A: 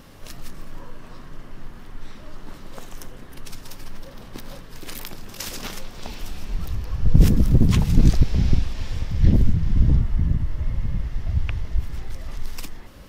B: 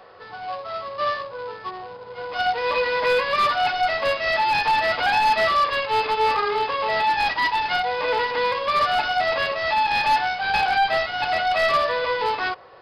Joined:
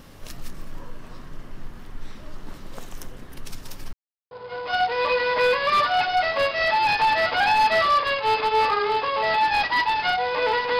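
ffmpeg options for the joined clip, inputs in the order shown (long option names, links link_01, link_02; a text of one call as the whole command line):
ffmpeg -i cue0.wav -i cue1.wav -filter_complex "[0:a]apad=whole_dur=10.79,atrim=end=10.79,asplit=2[link_01][link_02];[link_01]atrim=end=3.93,asetpts=PTS-STARTPTS,afade=type=out:start_time=3.926:duration=0.004:curve=hsin[link_03];[link_02]atrim=start=3.93:end=4.31,asetpts=PTS-STARTPTS,volume=0[link_04];[1:a]atrim=start=1.97:end=8.45,asetpts=PTS-STARTPTS,afade=type=in:duration=0.004:curve=hsin[link_05];[link_03][link_04][link_05]concat=n=3:v=0:a=1" out.wav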